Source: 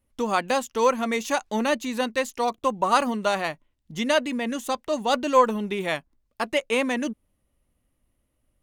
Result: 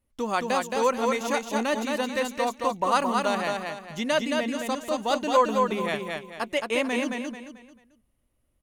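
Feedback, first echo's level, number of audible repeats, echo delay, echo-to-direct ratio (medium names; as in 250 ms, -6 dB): 34%, -3.5 dB, 4, 220 ms, -3.0 dB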